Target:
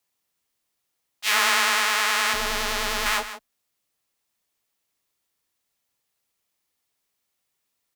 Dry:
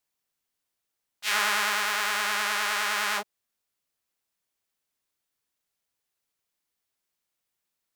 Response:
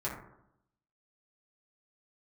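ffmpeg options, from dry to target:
-filter_complex "[0:a]bandreject=f=1500:w=15,asettb=1/sr,asplit=3[s0][s1][s2];[s0]atrim=end=2.334[s3];[s1]atrim=start=2.33:end=3.06,asetpts=PTS-STARTPTS,afade=t=in:d=0.004:c=qsin,afade=t=out:st=0.726:d=0.004:c=qsin,aeval=exprs='max(val(0),0)':c=same[s4];[s2]atrim=start=3.056[s5];[s3][s4]acrossfade=d=0.004:c1=hsin:c2=qsin[s6];[s6][s5]acrossfade=d=0.004:c1=qsin:c2=hsin,afreqshift=23,asplit=2[s7][s8];[s8]aecho=0:1:159:0.237[s9];[s7][s9]amix=inputs=2:normalize=0,volume=1.78"

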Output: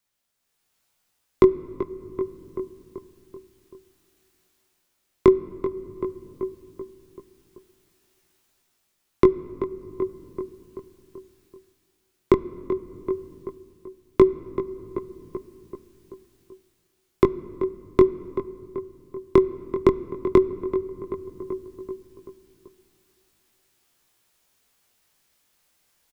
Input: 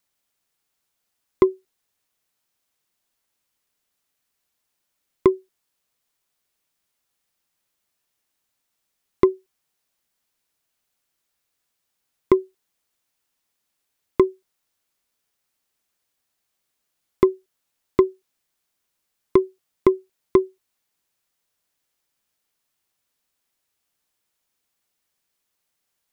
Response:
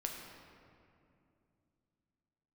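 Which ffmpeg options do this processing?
-filter_complex "[0:a]asplit=2[s0][s1];[s1]adelay=384,lowpass=f=2100:p=1,volume=0.211,asplit=2[s2][s3];[s3]adelay=384,lowpass=f=2100:p=1,volume=0.55,asplit=2[s4][s5];[s5]adelay=384,lowpass=f=2100:p=1,volume=0.55,asplit=2[s6][s7];[s7]adelay=384,lowpass=f=2100:p=1,volume=0.55,asplit=2[s8][s9];[s9]adelay=384,lowpass=f=2100:p=1,volume=0.55,asplit=2[s10][s11];[s11]adelay=384,lowpass=f=2100:p=1,volume=0.55[s12];[s0][s2][s4][s6][s8][s10][s12]amix=inputs=7:normalize=0,flanger=delay=17:depth=6.2:speed=0.13,acrossover=split=300[s13][s14];[s14]acompressor=threshold=0.0282:ratio=1.5[s15];[s13][s15]amix=inputs=2:normalize=0,asplit=2[s16][s17];[1:a]atrim=start_sample=2205,lowshelf=f=160:g=10[s18];[s17][s18]afir=irnorm=-1:irlink=0,volume=0.2[s19];[s16][s19]amix=inputs=2:normalize=0,dynaudnorm=f=190:g=7:m=3.76"

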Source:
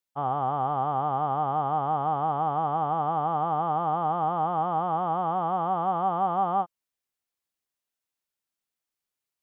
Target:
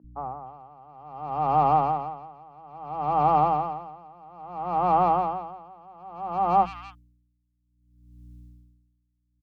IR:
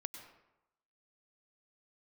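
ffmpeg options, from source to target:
-filter_complex "[0:a]asplit=2[s0][s1];[s1]asoftclip=type=tanh:threshold=0.0531,volume=0.562[s2];[s0][s2]amix=inputs=2:normalize=0,dynaudnorm=f=130:g=9:m=2.24,aeval=exprs='val(0)+0.00794*(sin(2*PI*60*n/s)+sin(2*PI*2*60*n/s)/2+sin(2*PI*3*60*n/s)/3+sin(2*PI*4*60*n/s)/4+sin(2*PI*5*60*n/s)/5)':c=same,acrossover=split=190|1700[s3][s4][s5];[s3]adelay=40[s6];[s5]adelay=290[s7];[s6][s4][s7]amix=inputs=3:normalize=0,aeval=exprs='val(0)*pow(10,-29*(0.5-0.5*cos(2*PI*0.6*n/s))/20)':c=same,volume=0.794"

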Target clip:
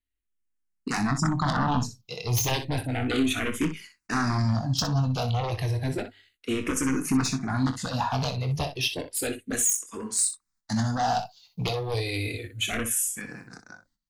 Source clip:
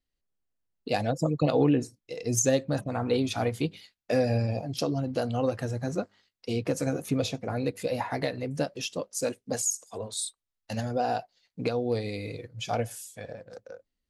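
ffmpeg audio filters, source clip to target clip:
-filter_complex "[0:a]asettb=1/sr,asplit=3[s0][s1][s2];[s0]atrim=end=10.864[s3];[s1]atrim=start=10.86:end=13.47,asetpts=PTS-STARTPTS,afade=t=in:d=0.004:c=qsin,afade=t=out:st=2.606:d=0.004:c=qsin,highshelf=f=7300:g=10.5[s4];[s2]atrim=start=13.466[s5];[s3][s4]acrossfade=d=0.004:c1=hsin:c2=qsin[s6];[s6][s5]acrossfade=d=0.004:c1=qsin:c2=hsin,aeval=exprs='0.266*sin(PI/2*3.55*val(0)/0.266)':c=same,equalizer=f=530:t=o:w=0.62:g=-14.5,aecho=1:1:23|62:0.335|0.299,agate=range=0.251:threshold=0.00126:ratio=16:detection=peak,asplit=2[s7][s8];[s8]afreqshift=-0.32[s9];[s7][s9]amix=inputs=2:normalize=1,volume=0.596"

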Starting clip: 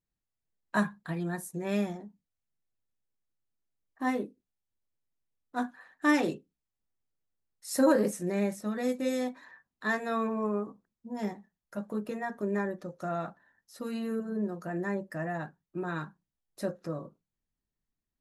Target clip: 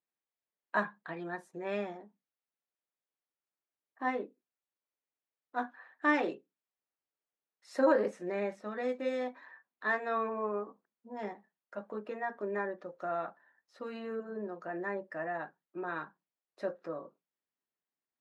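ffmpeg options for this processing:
-af "highpass=400,lowpass=2700"

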